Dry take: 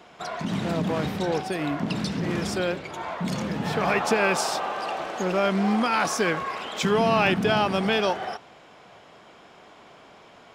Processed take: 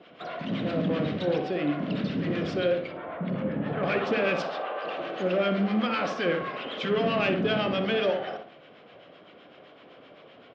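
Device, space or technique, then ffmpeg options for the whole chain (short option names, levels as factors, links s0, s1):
guitar amplifier with harmonic tremolo: -filter_complex "[0:a]acrossover=split=890[s0][s1];[s0]aeval=exprs='val(0)*(1-0.7/2+0.7/2*cos(2*PI*7.8*n/s))':c=same[s2];[s1]aeval=exprs='val(0)*(1-0.7/2-0.7/2*cos(2*PI*7.8*n/s))':c=same[s3];[s2][s3]amix=inputs=2:normalize=0,asoftclip=type=tanh:threshold=0.0891,highpass=96,equalizer=f=280:t=q:w=4:g=5,equalizer=f=540:t=q:w=4:g=7,equalizer=f=890:t=q:w=4:g=-9,equalizer=f=3000:t=q:w=4:g=4,lowpass=f=4100:w=0.5412,lowpass=f=4100:w=1.3066,asettb=1/sr,asplit=3[s4][s5][s6];[s4]atrim=end=2.924[s7];[s5]atrim=start=2.92:end=3.83,asetpts=PTS-STARTPTS,afade=t=in:d=0.004:c=qsin,afade=t=out:st=0.906:d=0.004:c=qsin,lowpass=1800[s8];[s6]atrim=start=3.826[s9];[s7][s8]acrossfade=d=0.004:c1=hsin:c2=qsin[s10];[s10][s9]acrossfade=d=0.004:c1=qsin:c2=hsin,asettb=1/sr,asplit=3[s11][s12][s13];[s11]atrim=end=4.424[s14];[s12]atrim=start=4.42:end=4.85,asetpts=PTS-STARTPTS,afade=t=in:d=0.004:c=qsin,afade=t=out:st=0.426:d=0.004:c=qsin,bass=f=250:g=-14,treble=f=4000:g=-13[s15];[s13]atrim=start=4.846[s16];[s14][s15]acrossfade=d=0.004:c1=hsin:c2=qsin[s17];[s17][s16]acrossfade=d=0.004:c1=qsin:c2=hsin,asplit=2[s18][s19];[s19]adelay=61,lowpass=f=1400:p=1,volume=0.631,asplit=2[s20][s21];[s21]adelay=61,lowpass=f=1400:p=1,volume=0.42,asplit=2[s22][s23];[s23]adelay=61,lowpass=f=1400:p=1,volume=0.42,asplit=2[s24][s25];[s25]adelay=61,lowpass=f=1400:p=1,volume=0.42,asplit=2[s26][s27];[s27]adelay=61,lowpass=f=1400:p=1,volume=0.42[s28];[s18][s20][s22][s24][s26][s28]amix=inputs=6:normalize=0"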